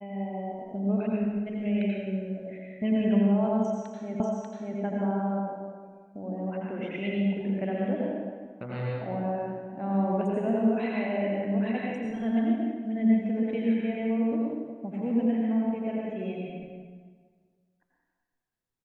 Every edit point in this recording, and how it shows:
0:04.20: the same again, the last 0.59 s

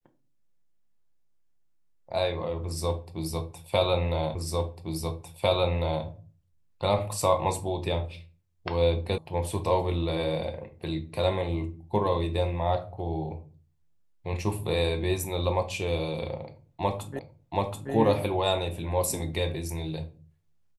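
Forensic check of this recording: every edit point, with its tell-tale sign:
0:04.35: the same again, the last 1.7 s
0:09.18: cut off before it has died away
0:17.19: the same again, the last 0.73 s

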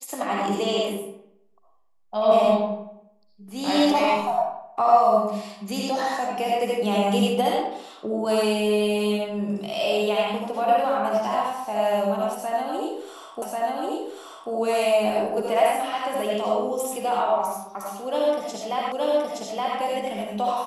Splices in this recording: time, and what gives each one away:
0:13.42: the same again, the last 1.09 s
0:18.92: the same again, the last 0.87 s

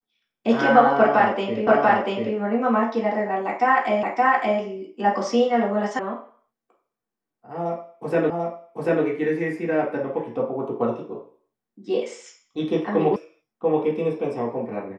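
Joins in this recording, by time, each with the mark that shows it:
0:01.67: the same again, the last 0.69 s
0:04.03: the same again, the last 0.57 s
0:05.99: cut off before it has died away
0:08.30: the same again, the last 0.74 s
0:13.16: cut off before it has died away

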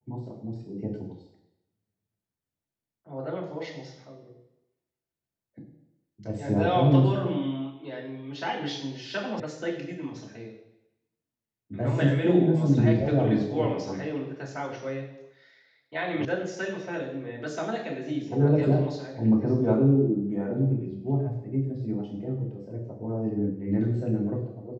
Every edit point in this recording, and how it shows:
0:09.40: cut off before it has died away
0:16.25: cut off before it has died away

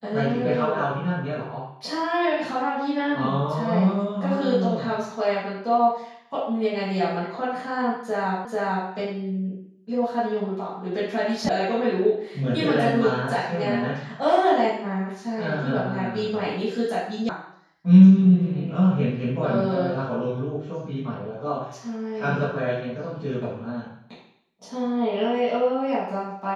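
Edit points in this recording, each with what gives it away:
0:08.45: the same again, the last 0.44 s
0:11.49: cut off before it has died away
0:17.29: cut off before it has died away

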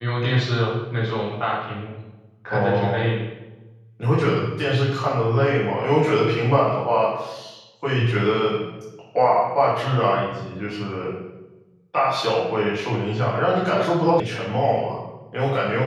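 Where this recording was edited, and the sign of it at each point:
0:14.20: cut off before it has died away

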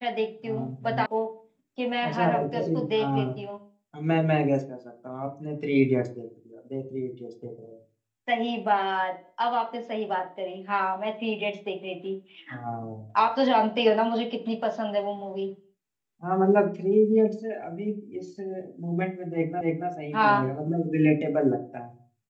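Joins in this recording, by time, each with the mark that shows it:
0:01.06: cut off before it has died away
0:19.61: the same again, the last 0.28 s

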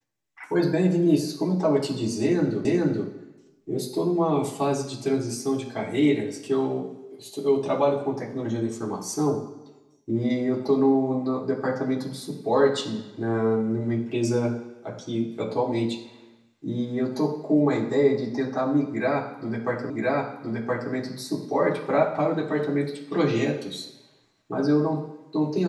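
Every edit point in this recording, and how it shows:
0:02.65: the same again, the last 0.43 s
0:19.90: the same again, the last 1.02 s

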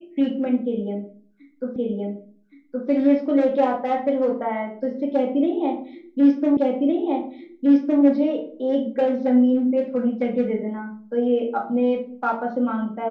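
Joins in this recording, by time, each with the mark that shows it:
0:01.76: the same again, the last 1.12 s
0:06.57: the same again, the last 1.46 s

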